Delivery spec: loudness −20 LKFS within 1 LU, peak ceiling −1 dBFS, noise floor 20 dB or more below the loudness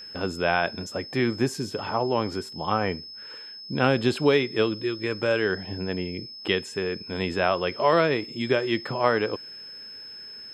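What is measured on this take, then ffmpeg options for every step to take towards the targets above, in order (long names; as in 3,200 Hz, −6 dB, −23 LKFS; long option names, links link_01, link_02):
interfering tone 5,200 Hz; level of the tone −39 dBFS; integrated loudness −26.0 LKFS; sample peak −6.0 dBFS; target loudness −20.0 LKFS
→ -af "bandreject=frequency=5200:width=30"
-af "volume=6dB,alimiter=limit=-1dB:level=0:latency=1"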